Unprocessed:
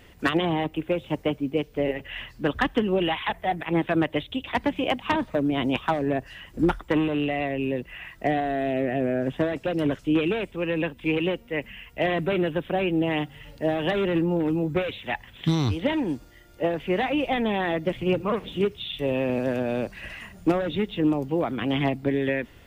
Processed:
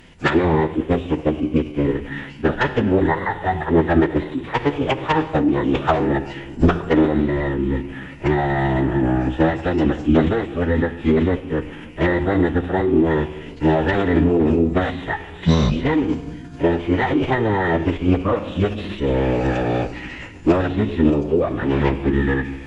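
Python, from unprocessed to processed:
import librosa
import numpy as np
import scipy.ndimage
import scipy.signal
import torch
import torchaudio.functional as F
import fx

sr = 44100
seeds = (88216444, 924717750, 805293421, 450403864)

y = fx.room_shoebox(x, sr, seeds[0], volume_m3=1700.0, walls='mixed', distance_m=0.64)
y = fx.pitch_keep_formants(y, sr, semitones=-12.0)
y = y * librosa.db_to_amplitude(6.5)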